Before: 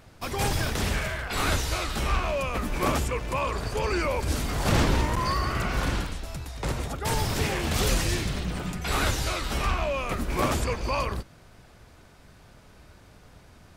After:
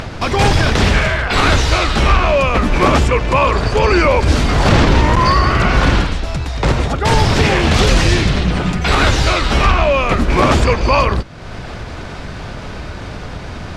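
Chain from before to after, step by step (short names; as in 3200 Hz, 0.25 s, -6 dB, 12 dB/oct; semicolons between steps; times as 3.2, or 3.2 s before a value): LPF 5000 Hz 12 dB/oct; upward compressor, threshold -31 dBFS; maximiser +16 dB; gain -1 dB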